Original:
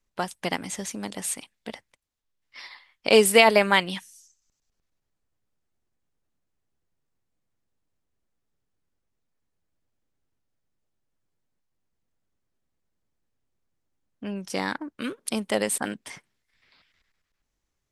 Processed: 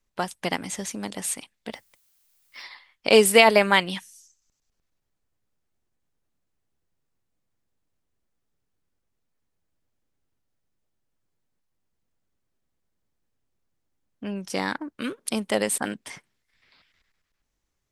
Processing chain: 1.72–2.62 added noise blue -67 dBFS; gain +1 dB

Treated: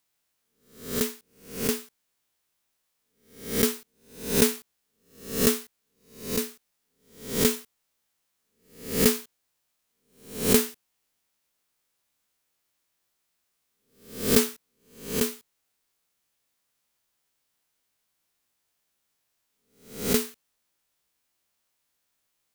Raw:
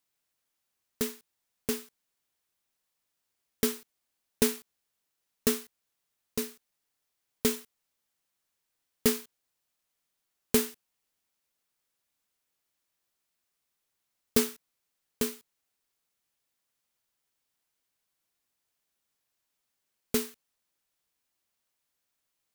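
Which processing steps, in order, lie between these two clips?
spectral swells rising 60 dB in 0.52 s; gain +3 dB

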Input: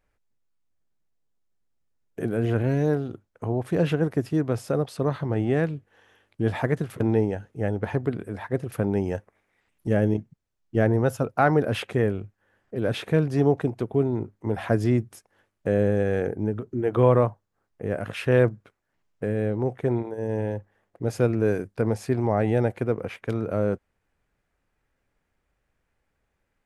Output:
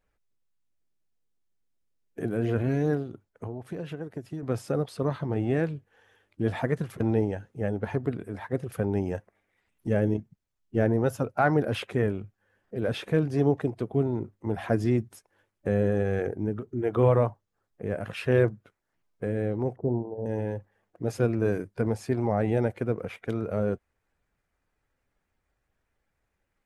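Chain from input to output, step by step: bin magnitudes rounded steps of 15 dB; 3.02–4.43 compressor 8:1, threshold -30 dBFS, peak gain reduction 12.5 dB; 19.76–20.26 steep low-pass 910 Hz 36 dB/oct; gain -2.5 dB

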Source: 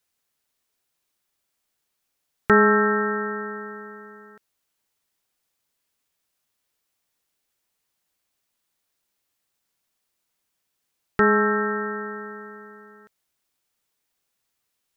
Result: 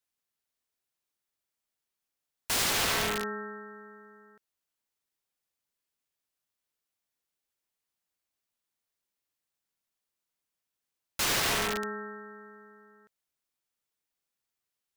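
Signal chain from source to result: wrapped overs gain 18.5 dB; upward expander 1.5:1, over -35 dBFS; gain -4 dB

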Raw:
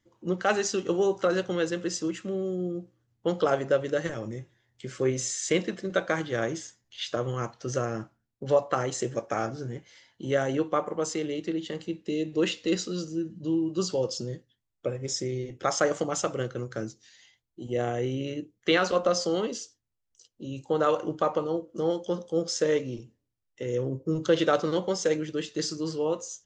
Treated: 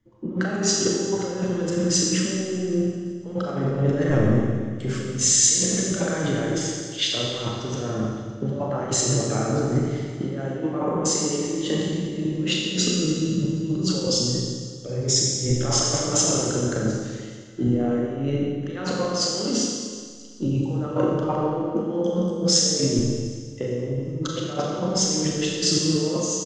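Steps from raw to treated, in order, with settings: low shelf 400 Hz +10 dB; negative-ratio compressor -31 dBFS, ratio -1; feedback echo 0.384 s, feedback 52%, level -19.5 dB; Schroeder reverb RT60 2.2 s, combs from 29 ms, DRR -2.5 dB; three-band expander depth 40%; gain +2.5 dB

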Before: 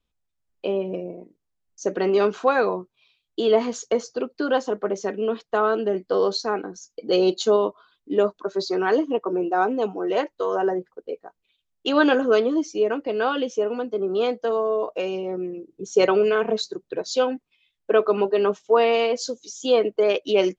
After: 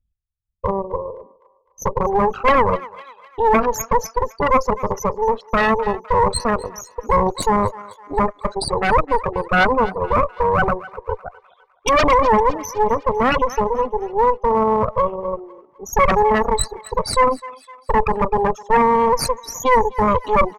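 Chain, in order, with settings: formant sharpening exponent 3; comb 1.5 ms, depth 91%; added harmonics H 3 -13 dB, 5 -20 dB, 6 -6 dB, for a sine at -4 dBFS; in parallel at -7 dB: one-sided clip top -15 dBFS; on the sum: dynamic EQ 3500 Hz, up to -6 dB, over -35 dBFS, Q 1.9; on a send: thinning echo 0.254 s, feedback 51%, high-pass 640 Hz, level -20.5 dB; on the sum: maximiser +8.5 dB; gain -6 dB

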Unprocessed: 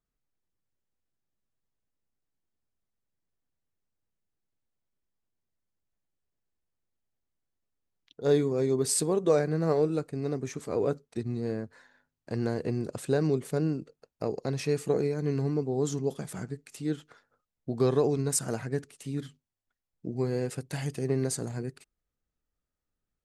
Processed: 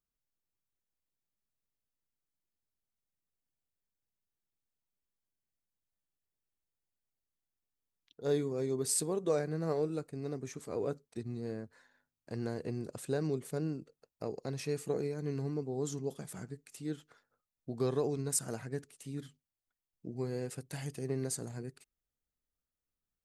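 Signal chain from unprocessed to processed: high shelf 7900 Hz +7 dB; gain -7.5 dB

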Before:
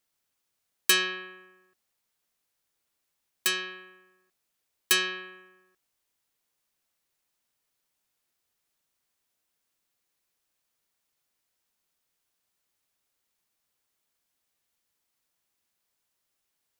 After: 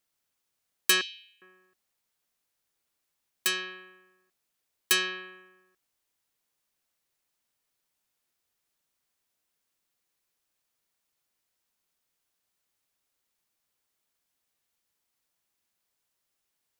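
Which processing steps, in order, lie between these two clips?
1.01–1.42 inverse Chebyshev high-pass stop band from 1500 Hz, stop band 40 dB; gain -1 dB

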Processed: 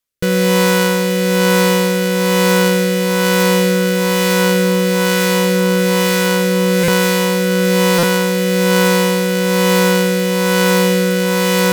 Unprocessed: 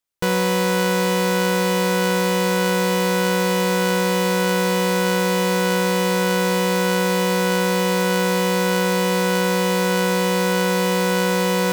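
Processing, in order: rotary speaker horn 1.1 Hz; thirty-one-band EQ 315 Hz -4 dB, 800 Hz -8 dB, 12500 Hz +4 dB; stuck buffer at 6.83/7.98, samples 256, times 8; gain +8 dB

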